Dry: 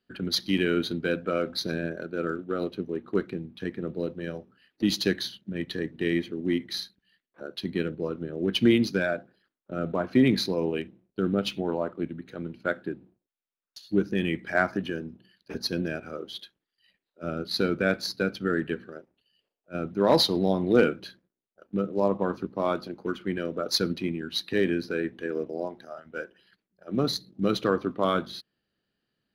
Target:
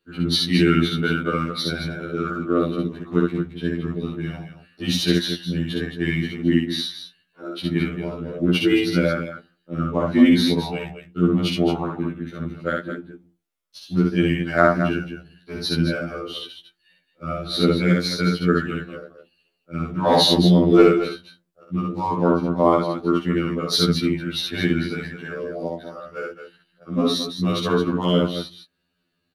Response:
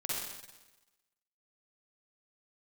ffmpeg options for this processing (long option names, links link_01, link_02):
-af "asetrate=41625,aresample=44100,atempo=1.05946,aecho=1:1:61.22|218.7:0.794|0.355,afftfilt=real='re*2*eq(mod(b,4),0)':imag='im*2*eq(mod(b,4),0)':win_size=2048:overlap=0.75,volume=6.5dB"